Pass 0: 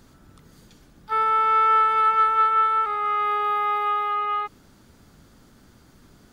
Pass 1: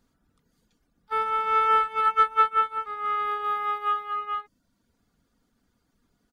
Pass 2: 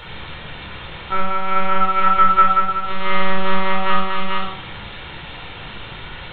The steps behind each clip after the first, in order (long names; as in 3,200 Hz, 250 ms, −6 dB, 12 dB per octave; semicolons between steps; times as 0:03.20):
reverb reduction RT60 0.63 s; comb filter 4.2 ms, depth 30%; expander for the loud parts 2.5 to 1, over −34 dBFS; level +4.5 dB
bit-depth reduction 6 bits, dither triangular; one-pitch LPC vocoder at 8 kHz 190 Hz; rectangular room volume 2,100 cubic metres, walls furnished, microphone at 4.4 metres; level +4.5 dB